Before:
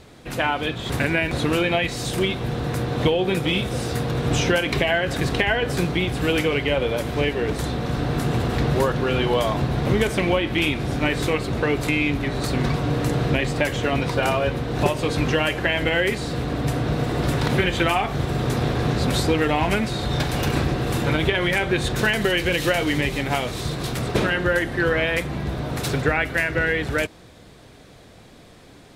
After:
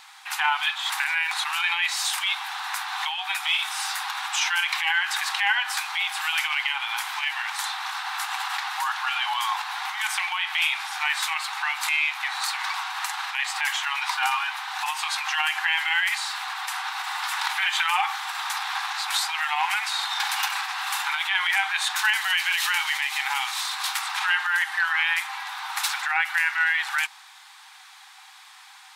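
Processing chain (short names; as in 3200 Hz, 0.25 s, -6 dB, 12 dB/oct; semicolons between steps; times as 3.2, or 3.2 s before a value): limiter -15.5 dBFS, peak gain reduction 10 dB; brick-wall FIR high-pass 750 Hz; gain +5.5 dB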